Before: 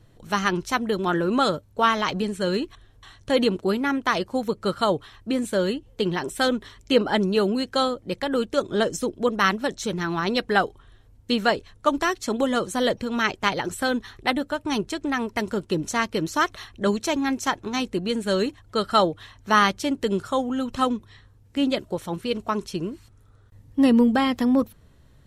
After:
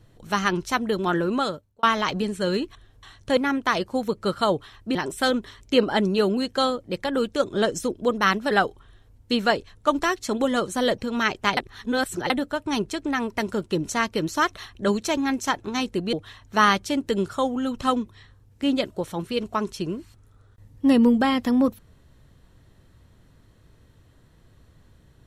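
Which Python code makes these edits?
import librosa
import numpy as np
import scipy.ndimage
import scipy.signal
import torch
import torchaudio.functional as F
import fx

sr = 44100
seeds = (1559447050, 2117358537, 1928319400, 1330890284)

y = fx.edit(x, sr, fx.fade_out_span(start_s=1.2, length_s=0.63),
    fx.cut(start_s=3.37, length_s=0.4),
    fx.cut(start_s=5.35, length_s=0.78),
    fx.cut(start_s=9.69, length_s=0.81),
    fx.reverse_span(start_s=13.56, length_s=0.73),
    fx.cut(start_s=18.12, length_s=0.95), tone=tone)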